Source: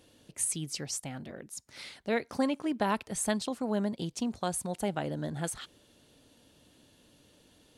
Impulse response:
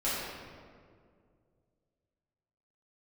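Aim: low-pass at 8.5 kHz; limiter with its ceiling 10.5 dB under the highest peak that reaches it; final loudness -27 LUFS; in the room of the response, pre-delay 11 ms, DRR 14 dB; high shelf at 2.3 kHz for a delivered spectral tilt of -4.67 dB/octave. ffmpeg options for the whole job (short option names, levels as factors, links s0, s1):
-filter_complex "[0:a]lowpass=8500,highshelf=f=2300:g=-4,alimiter=level_in=1.68:limit=0.0631:level=0:latency=1,volume=0.596,asplit=2[s0][s1];[1:a]atrim=start_sample=2205,adelay=11[s2];[s1][s2]afir=irnorm=-1:irlink=0,volume=0.0708[s3];[s0][s3]amix=inputs=2:normalize=0,volume=3.98"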